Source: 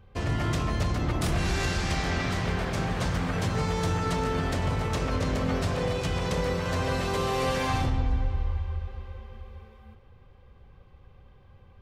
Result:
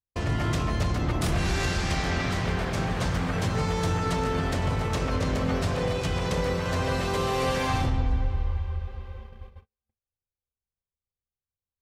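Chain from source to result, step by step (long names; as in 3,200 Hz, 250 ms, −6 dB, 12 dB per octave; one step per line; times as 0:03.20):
noise gate −41 dBFS, range −46 dB
level +1 dB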